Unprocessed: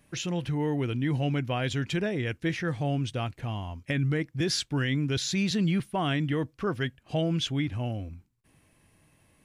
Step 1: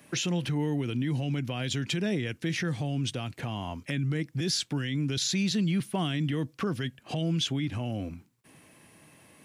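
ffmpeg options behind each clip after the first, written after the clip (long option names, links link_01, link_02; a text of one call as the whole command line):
ffmpeg -i in.wav -filter_complex "[0:a]acrossover=split=250|3000[link_01][link_02][link_03];[link_02]acompressor=threshold=-39dB:ratio=6[link_04];[link_01][link_04][link_03]amix=inputs=3:normalize=0,alimiter=level_in=4.5dB:limit=-24dB:level=0:latency=1:release=96,volume=-4.5dB,highpass=160,volume=9dB" out.wav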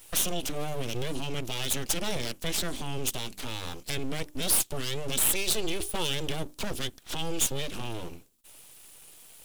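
ffmpeg -i in.wav -af "bandreject=frequency=50:width_type=h:width=6,bandreject=frequency=100:width_type=h:width=6,bandreject=frequency=150:width_type=h:width=6,bandreject=frequency=200:width_type=h:width=6,aeval=exprs='abs(val(0))':channel_layout=same,aexciter=amount=2.4:drive=6:freq=2800" out.wav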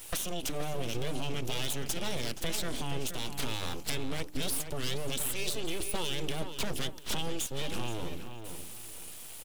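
ffmpeg -i in.wav -filter_complex "[0:a]alimiter=limit=-17.5dB:level=0:latency=1:release=294,acompressor=threshold=-36dB:ratio=4,asplit=2[link_01][link_02];[link_02]adelay=474,lowpass=frequency=3300:poles=1,volume=-8dB,asplit=2[link_03][link_04];[link_04]adelay=474,lowpass=frequency=3300:poles=1,volume=0.28,asplit=2[link_05][link_06];[link_06]adelay=474,lowpass=frequency=3300:poles=1,volume=0.28[link_07];[link_01][link_03][link_05][link_07]amix=inputs=4:normalize=0,volume=5.5dB" out.wav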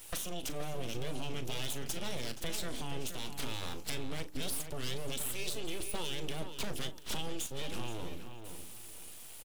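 ffmpeg -i in.wav -filter_complex "[0:a]asplit=2[link_01][link_02];[link_02]adelay=39,volume=-13.5dB[link_03];[link_01][link_03]amix=inputs=2:normalize=0,volume=-4.5dB" out.wav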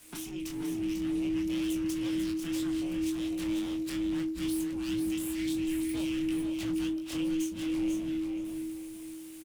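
ffmpeg -i in.wav -filter_complex "[0:a]flanger=delay=18:depth=8:speed=3,asplit=2[link_01][link_02];[link_02]aecho=0:1:495:0.473[link_03];[link_01][link_03]amix=inputs=2:normalize=0,afreqshift=-320" out.wav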